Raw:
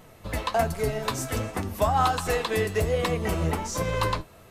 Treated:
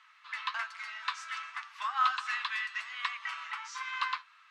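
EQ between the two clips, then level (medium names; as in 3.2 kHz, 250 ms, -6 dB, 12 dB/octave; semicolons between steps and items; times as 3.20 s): steep high-pass 1.1 kHz 48 dB/octave; low-pass 3.8 kHz 12 dB/octave; distance through air 56 m; 0.0 dB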